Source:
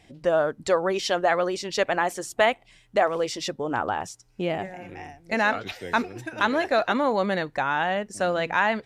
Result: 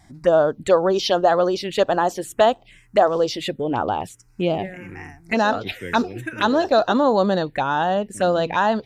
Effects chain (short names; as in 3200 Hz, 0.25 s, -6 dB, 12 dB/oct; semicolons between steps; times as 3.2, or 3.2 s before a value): envelope phaser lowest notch 460 Hz, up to 2200 Hz, full sweep at -21 dBFS; gain +7 dB